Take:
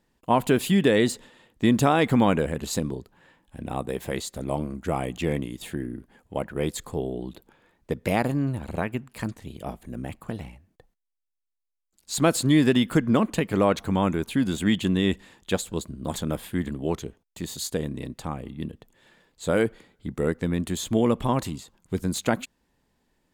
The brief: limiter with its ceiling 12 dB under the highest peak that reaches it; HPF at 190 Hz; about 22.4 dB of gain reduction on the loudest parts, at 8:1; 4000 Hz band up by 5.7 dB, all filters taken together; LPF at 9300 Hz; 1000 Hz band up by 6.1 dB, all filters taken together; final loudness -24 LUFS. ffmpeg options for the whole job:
-af "highpass=190,lowpass=9.3k,equalizer=f=1k:t=o:g=7.5,equalizer=f=4k:t=o:g=6.5,acompressor=threshold=-35dB:ratio=8,volume=18.5dB,alimiter=limit=-11.5dB:level=0:latency=1"

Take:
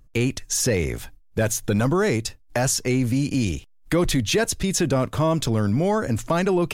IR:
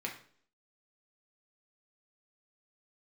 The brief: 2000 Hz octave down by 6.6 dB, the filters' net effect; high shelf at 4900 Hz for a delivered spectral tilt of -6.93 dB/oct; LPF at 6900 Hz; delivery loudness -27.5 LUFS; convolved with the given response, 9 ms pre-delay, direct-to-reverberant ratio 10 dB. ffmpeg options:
-filter_complex "[0:a]lowpass=6.9k,equalizer=f=2k:t=o:g=-7.5,highshelf=f=4.9k:g=-7.5,asplit=2[a][b];[1:a]atrim=start_sample=2205,adelay=9[c];[b][c]afir=irnorm=-1:irlink=0,volume=-12.5dB[d];[a][d]amix=inputs=2:normalize=0,volume=-4dB"

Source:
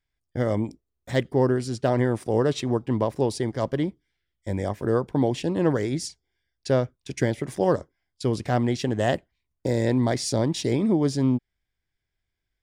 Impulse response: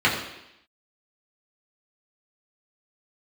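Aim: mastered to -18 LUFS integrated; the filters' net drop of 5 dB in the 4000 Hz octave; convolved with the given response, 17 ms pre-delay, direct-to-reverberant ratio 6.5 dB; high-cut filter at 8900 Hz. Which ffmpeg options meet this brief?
-filter_complex "[0:a]lowpass=8.9k,equalizer=f=4k:t=o:g=-6.5,asplit=2[a][b];[1:a]atrim=start_sample=2205,adelay=17[c];[b][c]afir=irnorm=-1:irlink=0,volume=-25.5dB[d];[a][d]amix=inputs=2:normalize=0,volume=7dB"

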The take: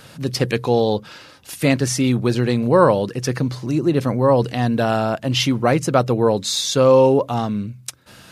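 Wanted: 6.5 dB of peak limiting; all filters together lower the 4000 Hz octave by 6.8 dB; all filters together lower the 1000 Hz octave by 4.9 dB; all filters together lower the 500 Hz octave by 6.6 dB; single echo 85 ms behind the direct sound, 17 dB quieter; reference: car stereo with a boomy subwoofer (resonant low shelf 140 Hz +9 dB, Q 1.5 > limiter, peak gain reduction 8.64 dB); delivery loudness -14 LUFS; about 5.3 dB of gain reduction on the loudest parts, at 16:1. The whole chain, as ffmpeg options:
-af "equalizer=f=500:t=o:g=-6,equalizer=f=1k:t=o:g=-3.5,equalizer=f=4k:t=o:g=-8.5,acompressor=threshold=-19dB:ratio=16,alimiter=limit=-17.5dB:level=0:latency=1,lowshelf=f=140:t=q:w=1.5:g=9,aecho=1:1:85:0.141,volume=14dB,alimiter=limit=-6dB:level=0:latency=1"

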